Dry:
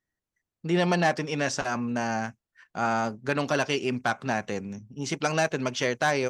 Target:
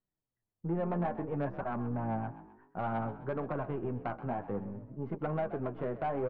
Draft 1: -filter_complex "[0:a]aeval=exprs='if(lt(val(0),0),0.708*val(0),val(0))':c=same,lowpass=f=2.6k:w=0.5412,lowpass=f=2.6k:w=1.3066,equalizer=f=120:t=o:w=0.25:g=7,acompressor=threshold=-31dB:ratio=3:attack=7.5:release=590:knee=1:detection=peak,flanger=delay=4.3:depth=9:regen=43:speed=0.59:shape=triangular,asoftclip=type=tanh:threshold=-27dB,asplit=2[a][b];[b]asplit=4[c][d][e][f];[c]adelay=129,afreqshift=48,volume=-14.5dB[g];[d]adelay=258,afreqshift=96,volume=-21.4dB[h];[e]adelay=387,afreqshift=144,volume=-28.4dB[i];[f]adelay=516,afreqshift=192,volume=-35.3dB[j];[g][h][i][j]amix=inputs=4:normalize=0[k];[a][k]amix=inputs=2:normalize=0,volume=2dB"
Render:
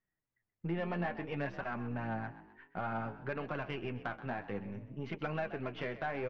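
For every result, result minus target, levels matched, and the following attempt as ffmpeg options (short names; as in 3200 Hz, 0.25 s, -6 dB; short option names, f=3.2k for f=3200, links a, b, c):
2000 Hz band +9.5 dB; compressor: peak gain reduction +5 dB
-filter_complex "[0:a]aeval=exprs='if(lt(val(0),0),0.708*val(0),val(0))':c=same,lowpass=f=1.2k:w=0.5412,lowpass=f=1.2k:w=1.3066,equalizer=f=120:t=o:w=0.25:g=7,acompressor=threshold=-31dB:ratio=3:attack=7.5:release=590:knee=1:detection=peak,flanger=delay=4.3:depth=9:regen=43:speed=0.59:shape=triangular,asoftclip=type=tanh:threshold=-27dB,asplit=2[a][b];[b]asplit=4[c][d][e][f];[c]adelay=129,afreqshift=48,volume=-14.5dB[g];[d]adelay=258,afreqshift=96,volume=-21.4dB[h];[e]adelay=387,afreqshift=144,volume=-28.4dB[i];[f]adelay=516,afreqshift=192,volume=-35.3dB[j];[g][h][i][j]amix=inputs=4:normalize=0[k];[a][k]amix=inputs=2:normalize=0,volume=2dB"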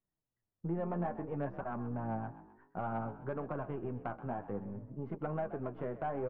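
compressor: peak gain reduction +4.5 dB
-filter_complex "[0:a]aeval=exprs='if(lt(val(0),0),0.708*val(0),val(0))':c=same,lowpass=f=1.2k:w=0.5412,lowpass=f=1.2k:w=1.3066,equalizer=f=120:t=o:w=0.25:g=7,acompressor=threshold=-24.5dB:ratio=3:attack=7.5:release=590:knee=1:detection=peak,flanger=delay=4.3:depth=9:regen=43:speed=0.59:shape=triangular,asoftclip=type=tanh:threshold=-27dB,asplit=2[a][b];[b]asplit=4[c][d][e][f];[c]adelay=129,afreqshift=48,volume=-14.5dB[g];[d]adelay=258,afreqshift=96,volume=-21.4dB[h];[e]adelay=387,afreqshift=144,volume=-28.4dB[i];[f]adelay=516,afreqshift=192,volume=-35.3dB[j];[g][h][i][j]amix=inputs=4:normalize=0[k];[a][k]amix=inputs=2:normalize=0,volume=2dB"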